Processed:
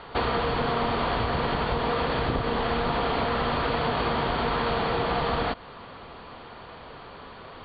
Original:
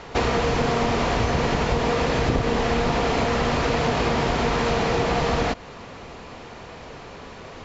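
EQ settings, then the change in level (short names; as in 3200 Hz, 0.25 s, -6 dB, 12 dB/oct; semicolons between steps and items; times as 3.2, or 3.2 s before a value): rippled Chebyshev low-pass 4600 Hz, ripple 6 dB; 0.0 dB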